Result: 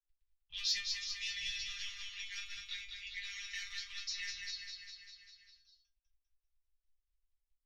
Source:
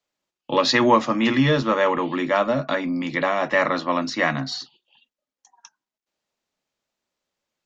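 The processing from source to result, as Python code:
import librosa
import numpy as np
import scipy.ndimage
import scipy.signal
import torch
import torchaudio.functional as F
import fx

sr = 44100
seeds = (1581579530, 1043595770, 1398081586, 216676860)

p1 = fx.dmg_crackle(x, sr, seeds[0], per_s=12.0, level_db=-38.0)
p2 = np.clip(10.0 ** (14.5 / 20.0) * p1, -1.0, 1.0) / 10.0 ** (14.5 / 20.0)
p3 = p1 + (p2 * 10.0 ** (-7.0 / 20.0))
p4 = fx.env_lowpass(p3, sr, base_hz=450.0, full_db=-15.0)
p5 = scipy.signal.sosfilt(scipy.signal.cheby2(4, 70, [190.0, 700.0], 'bandstop', fs=sr, output='sos'), p4)
p6 = fx.high_shelf(p5, sr, hz=5500.0, db=-8.5)
p7 = fx.comb_fb(p6, sr, f0_hz=200.0, decay_s=0.19, harmonics='all', damping=0.0, mix_pct=100)
p8 = fx.echo_feedback(p7, sr, ms=199, feedback_pct=52, wet_db=-6.0)
p9 = 10.0 ** (-23.5 / 20.0) * np.tanh(p8 / 10.0 ** (-23.5 / 20.0))
p10 = fx.curve_eq(p9, sr, hz=(200.0, 1000.0, 2900.0, 5600.0, 8000.0), db=(0, -16, -10, 2, -6))
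p11 = fx.band_squash(p10, sr, depth_pct=40)
y = p11 * 10.0 ** (8.5 / 20.0)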